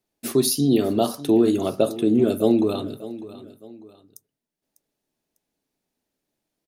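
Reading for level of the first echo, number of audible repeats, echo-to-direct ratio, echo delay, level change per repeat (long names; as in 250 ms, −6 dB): −16.0 dB, 2, −15.5 dB, 599 ms, −8.5 dB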